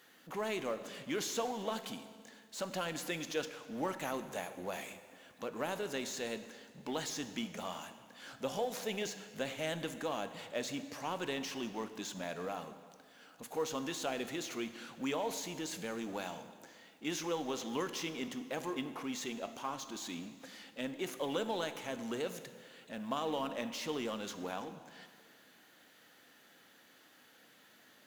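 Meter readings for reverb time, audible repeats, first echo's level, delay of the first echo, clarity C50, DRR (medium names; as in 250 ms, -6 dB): 1.9 s, no echo, no echo, no echo, 11.5 dB, 10.0 dB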